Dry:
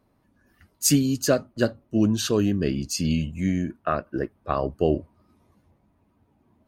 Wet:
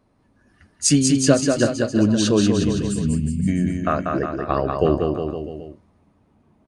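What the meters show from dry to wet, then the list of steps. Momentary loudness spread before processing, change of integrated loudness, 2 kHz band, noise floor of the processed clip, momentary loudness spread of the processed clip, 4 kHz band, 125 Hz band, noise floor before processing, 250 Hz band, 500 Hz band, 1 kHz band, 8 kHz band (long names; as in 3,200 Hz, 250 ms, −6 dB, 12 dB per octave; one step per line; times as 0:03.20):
7 LU, +4.5 dB, +4.5 dB, −61 dBFS, 8 LU, +4.0 dB, +5.0 dB, −67 dBFS, +5.0 dB, +5.0 dB, +5.0 dB, +4.5 dB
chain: downsampling to 22,050 Hz
gain on a spectral selection 0:02.63–0:03.48, 240–7,100 Hz −21 dB
bouncing-ball delay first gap 190 ms, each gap 0.9×, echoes 5
level +3 dB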